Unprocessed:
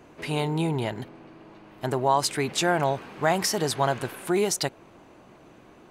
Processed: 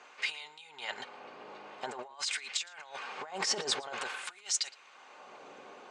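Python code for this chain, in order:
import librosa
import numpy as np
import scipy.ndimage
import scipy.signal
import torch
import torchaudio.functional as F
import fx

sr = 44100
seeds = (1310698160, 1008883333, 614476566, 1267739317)

y = scipy.signal.sosfilt(scipy.signal.butter(6, 7700.0, 'lowpass', fs=sr, output='sos'), x)
y = fx.peak_eq(y, sr, hz=1800.0, db=-2.5, octaves=0.22)
y = fx.notch(y, sr, hz=5900.0, q=25.0)
y = fx.over_compress(y, sr, threshold_db=-30.0, ratio=-0.5)
y = fx.filter_lfo_highpass(y, sr, shape='sine', hz=0.49, low_hz=460.0, high_hz=2000.0, q=0.81)
y = fx.notch_comb(y, sr, f0_hz=330.0)
y = y + 10.0 ** (-22.5 / 20.0) * np.pad(y, (int(114 * sr / 1000.0), 0))[:len(y)]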